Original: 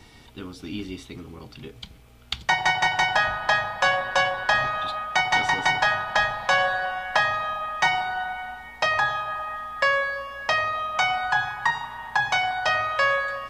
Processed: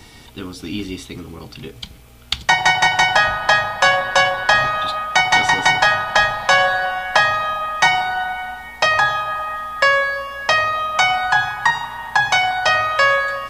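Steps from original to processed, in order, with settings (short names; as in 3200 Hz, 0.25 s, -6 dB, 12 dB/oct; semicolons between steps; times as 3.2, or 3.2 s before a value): high shelf 5700 Hz +6.5 dB; gain +6.5 dB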